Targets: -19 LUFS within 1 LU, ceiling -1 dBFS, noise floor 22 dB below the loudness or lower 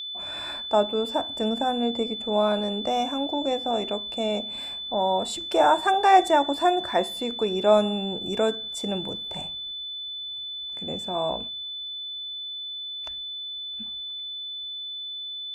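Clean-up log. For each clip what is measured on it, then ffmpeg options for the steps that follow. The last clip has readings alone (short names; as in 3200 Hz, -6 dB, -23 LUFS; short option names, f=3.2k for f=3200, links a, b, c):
steady tone 3500 Hz; tone level -32 dBFS; loudness -26.0 LUFS; peak -5.5 dBFS; loudness target -19.0 LUFS
-> -af "bandreject=f=3.5k:w=30"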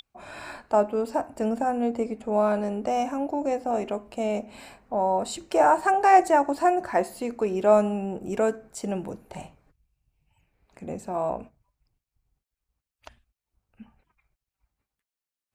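steady tone none; loudness -25.0 LUFS; peak -5.5 dBFS; loudness target -19.0 LUFS
-> -af "volume=6dB,alimiter=limit=-1dB:level=0:latency=1"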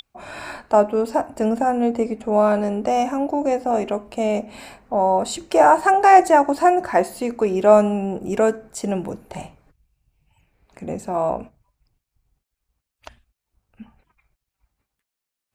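loudness -19.0 LUFS; peak -1.0 dBFS; noise floor -84 dBFS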